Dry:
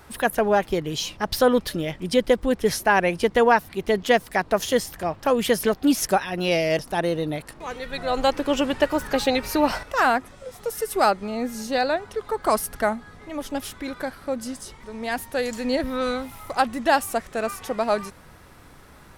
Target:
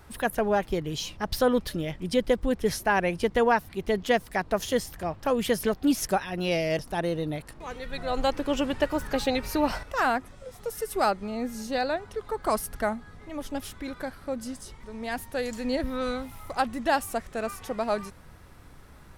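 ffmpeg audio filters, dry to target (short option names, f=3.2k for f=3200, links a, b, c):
-af "lowshelf=f=140:g=8,volume=-5.5dB"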